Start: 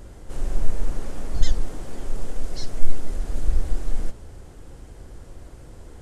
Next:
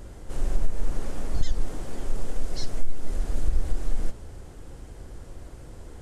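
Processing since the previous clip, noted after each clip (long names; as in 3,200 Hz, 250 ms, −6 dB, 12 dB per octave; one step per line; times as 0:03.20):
downward compressor 6 to 1, threshold −13 dBFS, peak gain reduction 9 dB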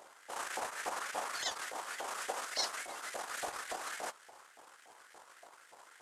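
power curve on the samples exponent 1.4
auto-filter high-pass saw up 3.5 Hz 700–1,900 Hz
level +6 dB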